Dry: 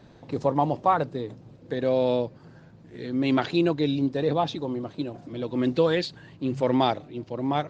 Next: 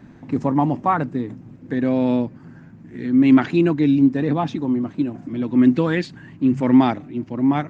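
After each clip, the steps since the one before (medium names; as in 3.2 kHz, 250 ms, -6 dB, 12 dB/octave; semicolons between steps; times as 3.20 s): graphic EQ 250/500/2000/4000 Hz +10/-9/+5/-11 dB; trim +4 dB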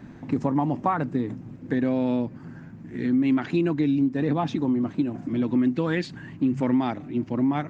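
compression 5:1, threshold -21 dBFS, peak gain reduction 11.5 dB; trim +1 dB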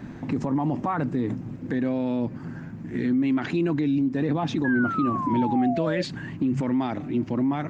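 peak limiter -22 dBFS, peak gain reduction 11 dB; painted sound fall, 4.64–6.03 s, 540–1700 Hz -34 dBFS; trim +5 dB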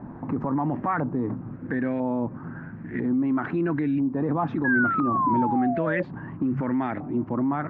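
LFO low-pass saw up 1 Hz 910–1900 Hz; trim -1.5 dB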